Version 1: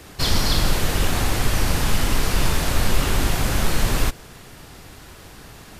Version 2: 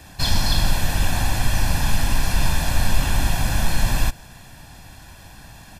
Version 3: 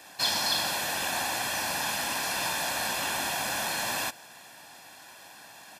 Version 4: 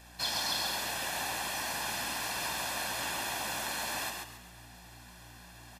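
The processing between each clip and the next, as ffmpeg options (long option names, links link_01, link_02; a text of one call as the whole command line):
ffmpeg -i in.wav -af "aecho=1:1:1.2:0.67,volume=-3dB" out.wav
ffmpeg -i in.wav -af "highpass=420,volume=-2dB" out.wav
ffmpeg -i in.wav -filter_complex "[0:a]aeval=exprs='val(0)+0.00355*(sin(2*PI*60*n/s)+sin(2*PI*2*60*n/s)/2+sin(2*PI*3*60*n/s)/3+sin(2*PI*4*60*n/s)/4+sin(2*PI*5*60*n/s)/5)':channel_layout=same,asplit=5[link_01][link_02][link_03][link_04][link_05];[link_02]adelay=135,afreqshift=57,volume=-4dB[link_06];[link_03]adelay=270,afreqshift=114,volume=-13.9dB[link_07];[link_04]adelay=405,afreqshift=171,volume=-23.8dB[link_08];[link_05]adelay=540,afreqshift=228,volume=-33.7dB[link_09];[link_01][link_06][link_07][link_08][link_09]amix=inputs=5:normalize=0,volume=-6.5dB" out.wav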